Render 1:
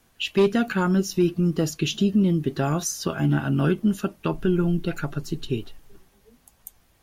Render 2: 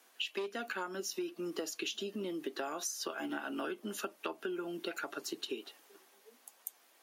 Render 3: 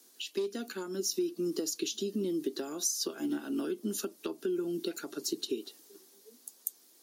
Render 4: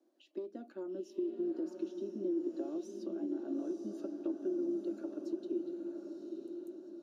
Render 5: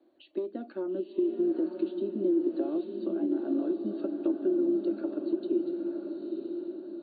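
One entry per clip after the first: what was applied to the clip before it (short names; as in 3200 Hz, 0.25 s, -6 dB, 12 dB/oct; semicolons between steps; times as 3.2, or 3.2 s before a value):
Bessel high-pass 470 Hz, order 8; compressor 10:1, threshold -35 dBFS, peak gain reduction 16 dB
band shelf 1300 Hz -14.5 dB 2.8 oct; gain +7.5 dB
double band-pass 440 Hz, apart 0.8 oct; compressor, threshold -37 dBFS, peak gain reduction 7 dB; diffused feedback echo 0.926 s, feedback 51%, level -5 dB; gain +4 dB
gain +8.5 dB; AC-3 48 kbps 32000 Hz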